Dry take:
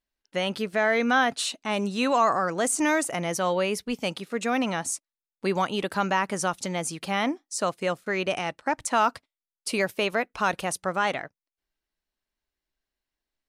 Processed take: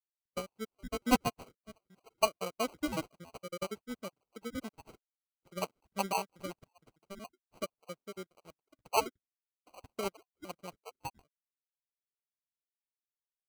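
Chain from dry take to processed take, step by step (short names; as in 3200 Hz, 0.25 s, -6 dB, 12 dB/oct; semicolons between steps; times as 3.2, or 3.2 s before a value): random spectral dropouts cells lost 67%; sample-and-hold 25×; upward expander 2.5:1, over -41 dBFS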